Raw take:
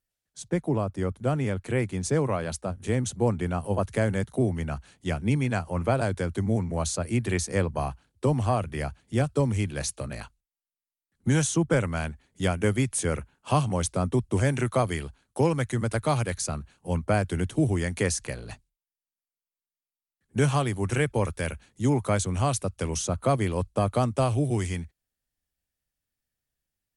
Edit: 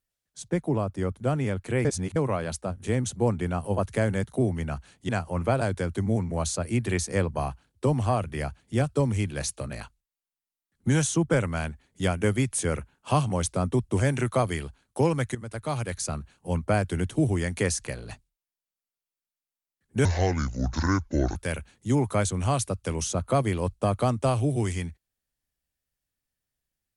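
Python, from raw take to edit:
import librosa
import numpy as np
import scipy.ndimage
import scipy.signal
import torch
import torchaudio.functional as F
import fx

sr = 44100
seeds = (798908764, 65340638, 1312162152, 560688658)

y = fx.edit(x, sr, fx.reverse_span(start_s=1.85, length_s=0.31),
    fx.cut(start_s=5.09, length_s=0.4),
    fx.fade_in_from(start_s=15.75, length_s=0.78, floor_db=-14.5),
    fx.speed_span(start_s=20.45, length_s=0.85, speed=0.65), tone=tone)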